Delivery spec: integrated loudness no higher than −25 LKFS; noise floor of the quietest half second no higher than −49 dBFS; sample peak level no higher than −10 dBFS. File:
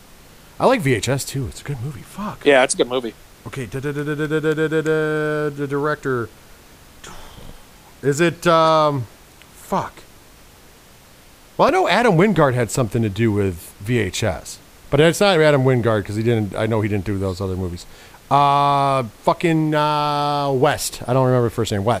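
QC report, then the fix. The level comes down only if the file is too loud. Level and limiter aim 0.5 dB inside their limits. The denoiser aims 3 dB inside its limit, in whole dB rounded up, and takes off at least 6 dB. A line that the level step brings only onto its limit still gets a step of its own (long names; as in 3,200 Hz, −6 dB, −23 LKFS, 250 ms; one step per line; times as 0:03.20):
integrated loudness −18.5 LKFS: out of spec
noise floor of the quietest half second −47 dBFS: out of spec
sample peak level −2.5 dBFS: out of spec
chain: level −7 dB
brickwall limiter −10.5 dBFS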